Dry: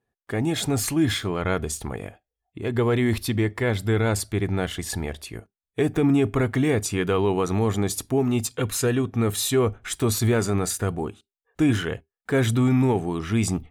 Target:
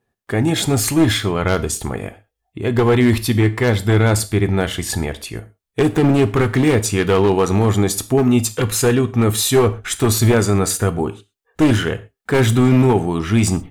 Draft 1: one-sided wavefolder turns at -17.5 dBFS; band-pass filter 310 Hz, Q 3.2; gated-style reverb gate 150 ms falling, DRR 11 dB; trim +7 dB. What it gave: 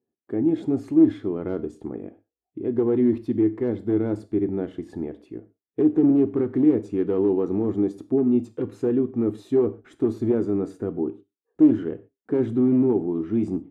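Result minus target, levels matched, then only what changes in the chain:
250 Hz band +3.5 dB
remove: band-pass filter 310 Hz, Q 3.2

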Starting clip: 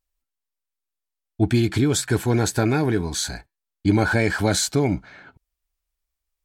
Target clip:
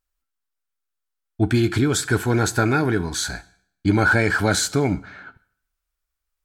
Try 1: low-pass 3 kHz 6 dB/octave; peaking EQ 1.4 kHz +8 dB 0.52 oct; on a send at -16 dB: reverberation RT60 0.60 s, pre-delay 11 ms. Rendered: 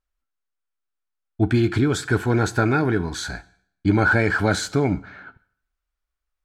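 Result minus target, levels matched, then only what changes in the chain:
4 kHz band -4.0 dB
remove: low-pass 3 kHz 6 dB/octave

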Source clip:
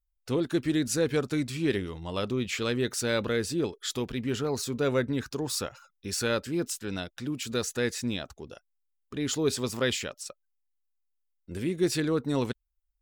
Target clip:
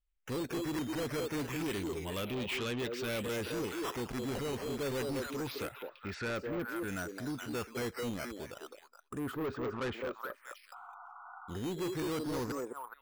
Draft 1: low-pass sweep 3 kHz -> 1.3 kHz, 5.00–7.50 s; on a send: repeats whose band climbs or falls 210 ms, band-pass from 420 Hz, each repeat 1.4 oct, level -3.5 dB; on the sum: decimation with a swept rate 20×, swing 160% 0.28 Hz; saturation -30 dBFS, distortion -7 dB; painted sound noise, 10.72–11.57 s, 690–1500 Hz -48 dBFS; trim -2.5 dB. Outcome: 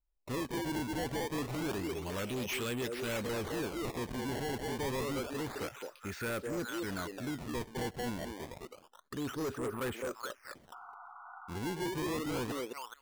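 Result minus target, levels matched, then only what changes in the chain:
decimation with a swept rate: distortion +8 dB
change: decimation with a swept rate 7×, swing 160% 0.28 Hz

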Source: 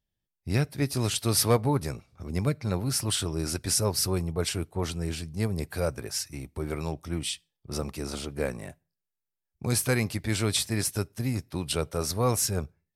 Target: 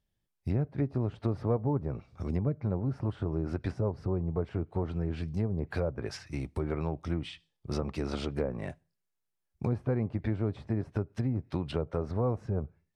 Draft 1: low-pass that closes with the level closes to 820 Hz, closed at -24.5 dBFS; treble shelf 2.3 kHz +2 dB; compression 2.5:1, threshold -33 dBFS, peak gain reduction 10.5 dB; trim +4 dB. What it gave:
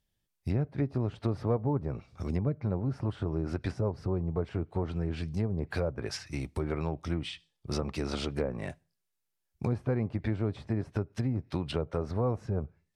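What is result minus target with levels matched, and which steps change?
4 kHz band +4.5 dB
change: treble shelf 2.3 kHz -4.5 dB

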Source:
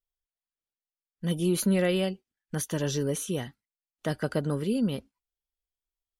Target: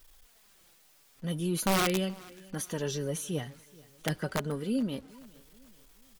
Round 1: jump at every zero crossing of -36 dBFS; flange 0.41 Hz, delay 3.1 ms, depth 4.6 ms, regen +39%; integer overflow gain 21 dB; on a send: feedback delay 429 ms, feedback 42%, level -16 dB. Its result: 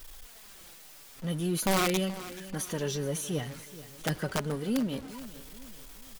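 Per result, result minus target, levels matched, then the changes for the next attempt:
jump at every zero crossing: distortion +10 dB; echo-to-direct +7 dB
change: jump at every zero crossing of -47 dBFS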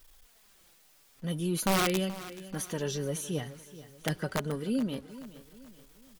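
echo-to-direct +7 dB
change: feedback delay 429 ms, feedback 42%, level -23 dB

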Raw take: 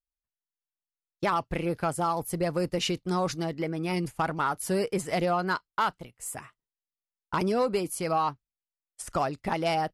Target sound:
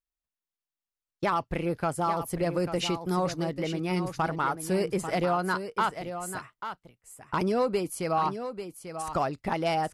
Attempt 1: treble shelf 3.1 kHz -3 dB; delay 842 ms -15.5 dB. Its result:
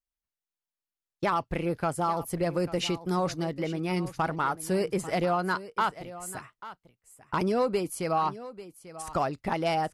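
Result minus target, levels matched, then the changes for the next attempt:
echo-to-direct -6 dB
change: delay 842 ms -9.5 dB

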